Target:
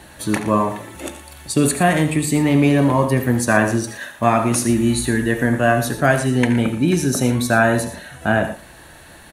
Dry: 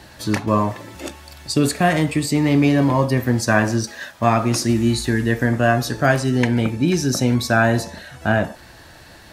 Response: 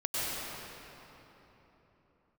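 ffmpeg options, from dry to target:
-af "equalizer=f=100:t=o:w=0.33:g=-7,equalizer=f=5k:t=o:w=0.33:g=-11,equalizer=f=10k:t=o:w=0.33:g=10,aecho=1:1:72|84|117:0.178|0.211|0.178,volume=1dB"

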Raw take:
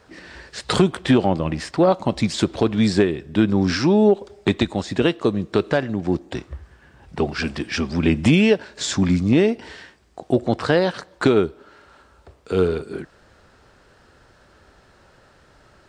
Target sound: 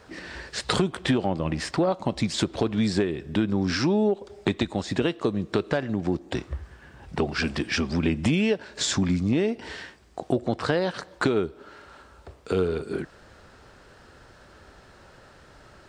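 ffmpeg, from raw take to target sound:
-af "acompressor=threshold=-26dB:ratio=2.5,volume=2dB"

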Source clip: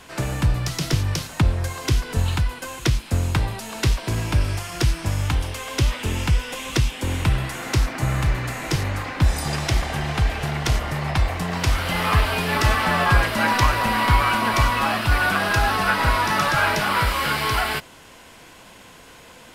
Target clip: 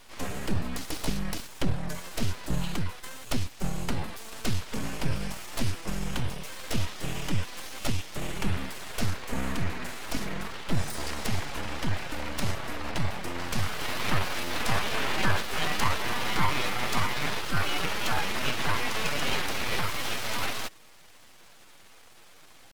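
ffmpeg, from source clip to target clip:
-af "aeval=exprs='abs(val(0))':c=same,atempo=0.86,volume=-5.5dB"

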